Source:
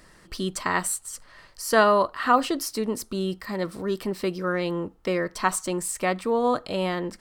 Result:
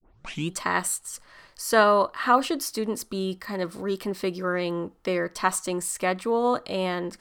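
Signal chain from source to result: tape start at the beginning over 0.52 s; low shelf 120 Hz -6 dB

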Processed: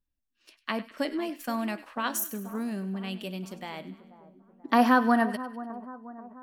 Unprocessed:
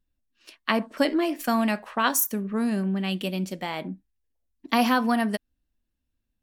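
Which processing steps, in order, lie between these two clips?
spectral gain 3.93–5.3, 220–2000 Hz +9 dB; split-band echo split 1300 Hz, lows 0.485 s, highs 99 ms, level -15 dB; gain -7.5 dB

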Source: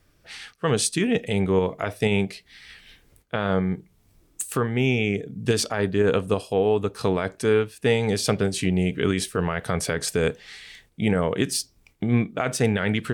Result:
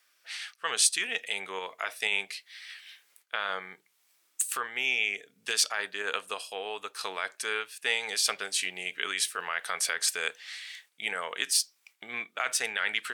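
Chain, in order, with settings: HPF 1400 Hz 12 dB/oct; gain +1.5 dB

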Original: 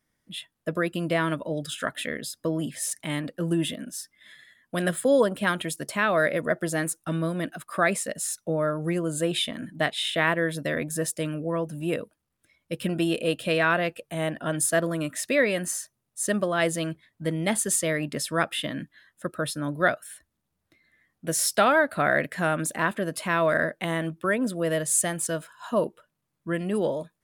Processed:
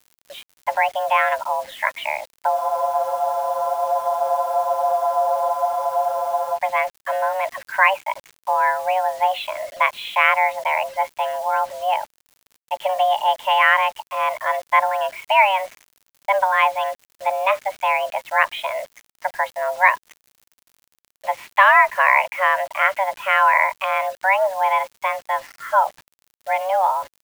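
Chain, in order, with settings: mistuned SSB +380 Hz 180–2600 Hz; crackle 110/s -48 dBFS; requantised 8-bit, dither none; spectral freeze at 2.56, 4.00 s; gain +7.5 dB

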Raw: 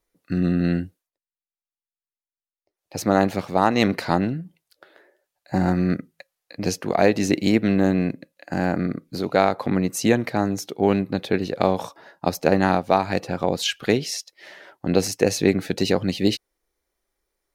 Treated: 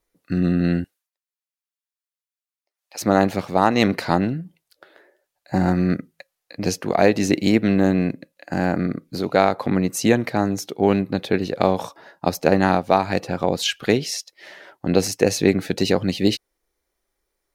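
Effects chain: 0.84–3.01 HPF 990 Hz 12 dB/oct; gain +1.5 dB

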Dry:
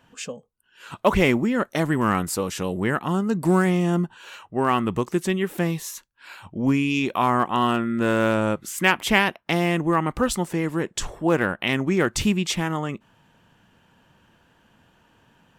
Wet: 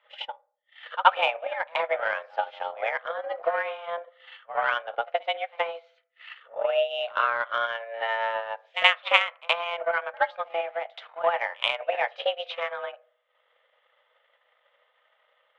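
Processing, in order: FDN reverb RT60 0.46 s, low-frequency decay 1.3×, high-frequency decay 0.4×, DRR 9.5 dB; mistuned SSB +340 Hz 150–3000 Hz; tilt +2.5 dB/oct; on a send: reverse echo 77 ms -12 dB; on the sum: transient shaper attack +11 dB, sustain -9 dB; gain -9 dB

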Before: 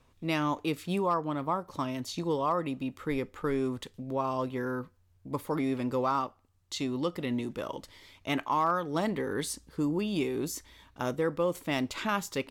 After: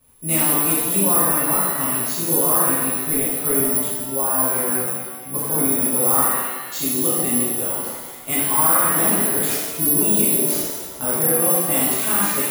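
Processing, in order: careless resampling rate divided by 4×, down none, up zero stuff; shimmer reverb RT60 1.4 s, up +7 st, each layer -8 dB, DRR -10 dB; gain -4.5 dB

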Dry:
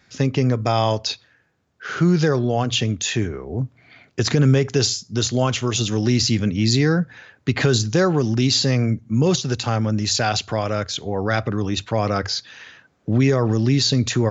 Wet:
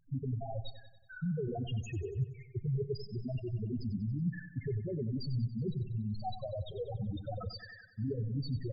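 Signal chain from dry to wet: half-wave gain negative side -7 dB; high shelf 5700 Hz -7 dB; reverse; compressor 12:1, threshold -34 dBFS, peak gain reduction 20 dB; reverse; loudest bins only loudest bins 2; time stretch by phase-locked vocoder 0.61×; feedback echo 94 ms, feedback 54%, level -13 dB; on a send at -22 dB: reverb, pre-delay 4 ms; on the sum: gain +7 dB

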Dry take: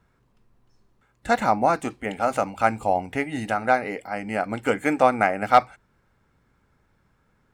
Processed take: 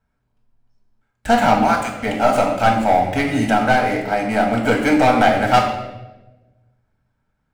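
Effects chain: 1.63–2.03 HPF 1000 Hz 12 dB/oct; sample leveller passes 3; reverb RT60 1.1 s, pre-delay 3 ms, DRR 0 dB; gain -6 dB

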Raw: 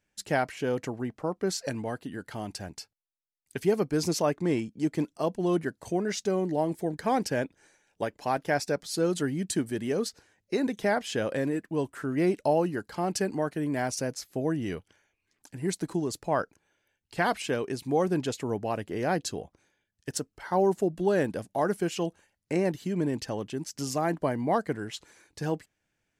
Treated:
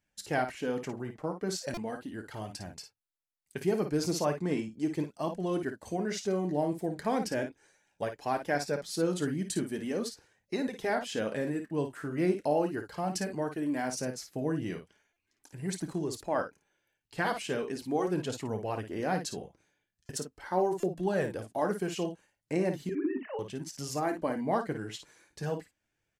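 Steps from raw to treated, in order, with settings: 22.89–23.39 sine-wave speech; early reflections 27 ms -14.5 dB, 55 ms -8.5 dB; flange 0.38 Hz, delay 0.9 ms, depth 6.1 ms, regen -49%; stuck buffer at 1.74/15.13/20.06/20.8, samples 128, times 10

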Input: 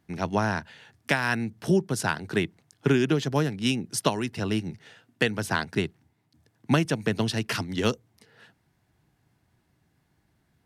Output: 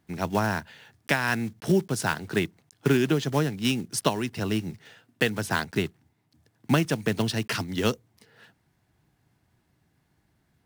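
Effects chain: block floating point 5-bit

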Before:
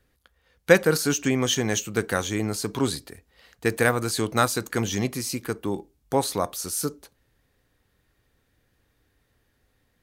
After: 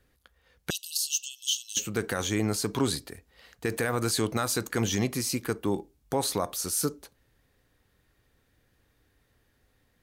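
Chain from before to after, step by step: 0.7–1.77 brick-wall FIR high-pass 2600 Hz; limiter -15.5 dBFS, peak gain reduction 11 dB

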